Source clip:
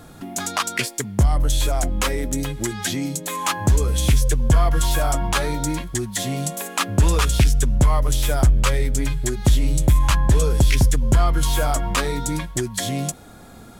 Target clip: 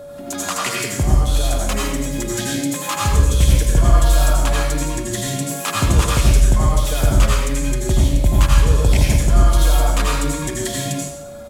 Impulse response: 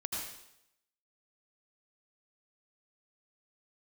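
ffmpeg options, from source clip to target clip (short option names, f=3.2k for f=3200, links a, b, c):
-filter_complex "[0:a]atempo=1.2,bandreject=f=61.56:t=h:w=4,bandreject=f=123.12:t=h:w=4,bandreject=f=184.68:t=h:w=4,bandreject=f=246.24:t=h:w=4,bandreject=f=307.8:t=h:w=4,bandreject=f=369.36:t=h:w=4,bandreject=f=430.92:t=h:w=4,bandreject=f=492.48:t=h:w=4,bandreject=f=554.04:t=h:w=4,bandreject=f=615.6:t=h:w=4,bandreject=f=677.16:t=h:w=4,bandreject=f=738.72:t=h:w=4,bandreject=f=800.28:t=h:w=4,bandreject=f=861.84:t=h:w=4,bandreject=f=923.4:t=h:w=4,bandreject=f=984.96:t=h:w=4,bandreject=f=1.04652k:t=h:w=4,bandreject=f=1.10808k:t=h:w=4,bandreject=f=1.16964k:t=h:w=4,bandreject=f=1.2312k:t=h:w=4,bandreject=f=1.29276k:t=h:w=4,bandreject=f=1.35432k:t=h:w=4,bandreject=f=1.41588k:t=h:w=4,bandreject=f=1.47744k:t=h:w=4,bandreject=f=1.539k:t=h:w=4,bandreject=f=1.60056k:t=h:w=4,bandreject=f=1.66212k:t=h:w=4,bandreject=f=1.72368k:t=h:w=4,bandreject=f=1.78524k:t=h:w=4,bandreject=f=1.8468k:t=h:w=4,bandreject=f=1.90836k:t=h:w=4,bandreject=f=1.96992k:t=h:w=4,bandreject=f=2.03148k:t=h:w=4,bandreject=f=2.09304k:t=h:w=4,bandreject=f=2.1546k:t=h:w=4,bandreject=f=2.21616k:t=h:w=4,bandreject=f=2.27772k:t=h:w=4,bandreject=f=2.33928k:t=h:w=4[a];[1:a]atrim=start_sample=2205[b];[a][b]afir=irnorm=-1:irlink=0,aeval=exprs='val(0)+0.0224*sin(2*PI*570*n/s)':c=same"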